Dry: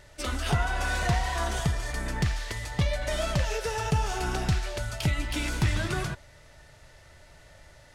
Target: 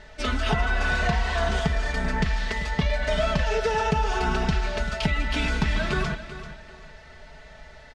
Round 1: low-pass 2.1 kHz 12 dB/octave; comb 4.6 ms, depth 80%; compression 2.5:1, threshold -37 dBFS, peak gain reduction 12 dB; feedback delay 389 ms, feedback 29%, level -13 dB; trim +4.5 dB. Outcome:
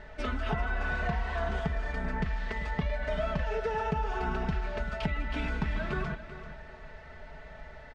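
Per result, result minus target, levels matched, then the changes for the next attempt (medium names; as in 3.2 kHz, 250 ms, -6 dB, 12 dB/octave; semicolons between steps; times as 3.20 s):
compression: peak gain reduction +7 dB; 4 kHz band -6.5 dB
change: compression 2.5:1, threshold -25 dBFS, peak gain reduction 4.5 dB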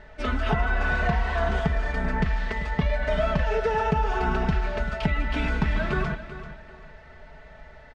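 4 kHz band -7.0 dB
change: low-pass 4.3 kHz 12 dB/octave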